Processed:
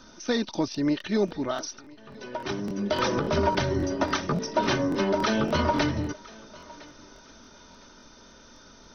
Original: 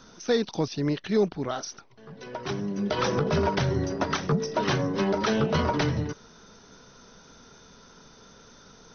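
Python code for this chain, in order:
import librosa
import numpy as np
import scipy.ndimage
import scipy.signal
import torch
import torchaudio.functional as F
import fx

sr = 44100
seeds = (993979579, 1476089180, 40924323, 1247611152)

y = x + 0.51 * np.pad(x, (int(3.3 * sr / 1000.0), 0))[:len(x)]
y = fx.echo_thinned(y, sr, ms=1009, feedback_pct=30, hz=320.0, wet_db=-21.0)
y = fx.buffer_crackle(y, sr, first_s=0.7, period_s=0.28, block=1024, kind='repeat')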